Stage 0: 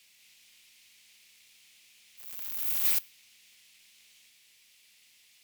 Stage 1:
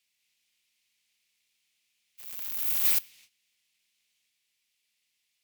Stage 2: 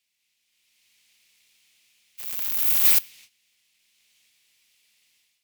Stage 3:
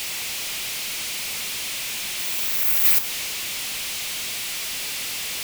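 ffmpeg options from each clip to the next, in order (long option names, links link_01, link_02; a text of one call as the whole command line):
ffmpeg -i in.wav -af "agate=range=-18dB:threshold=-56dB:ratio=16:detection=peak,volume=2dB" out.wav
ffmpeg -i in.wav -af "dynaudnorm=framelen=470:gausssize=3:maxgain=12.5dB" out.wav
ffmpeg -i in.wav -af "aeval=exprs='val(0)+0.5*0.0794*sgn(val(0))':channel_layout=same,volume=-1dB" out.wav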